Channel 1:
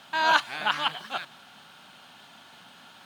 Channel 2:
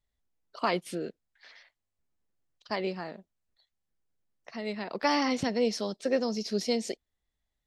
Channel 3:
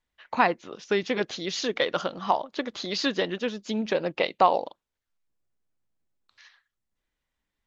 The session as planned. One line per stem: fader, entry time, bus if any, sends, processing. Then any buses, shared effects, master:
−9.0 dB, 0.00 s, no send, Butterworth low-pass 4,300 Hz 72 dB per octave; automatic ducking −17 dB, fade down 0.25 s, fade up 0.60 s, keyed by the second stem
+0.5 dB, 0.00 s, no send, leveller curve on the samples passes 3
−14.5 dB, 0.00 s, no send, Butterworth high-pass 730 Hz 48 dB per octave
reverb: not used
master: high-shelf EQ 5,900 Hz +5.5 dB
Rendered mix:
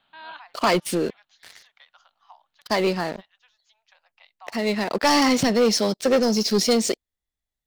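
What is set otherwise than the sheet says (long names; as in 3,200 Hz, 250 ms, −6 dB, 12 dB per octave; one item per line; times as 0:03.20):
stem 1 −9.0 dB → −17.5 dB
stem 3 −14.5 dB → −25.0 dB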